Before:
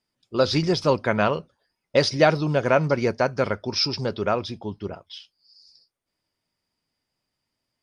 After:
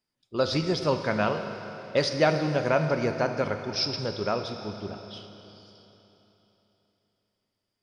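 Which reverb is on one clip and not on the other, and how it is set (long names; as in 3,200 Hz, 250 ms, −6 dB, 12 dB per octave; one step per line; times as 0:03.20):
four-comb reverb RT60 3.5 s, combs from 26 ms, DRR 6.5 dB
level −5 dB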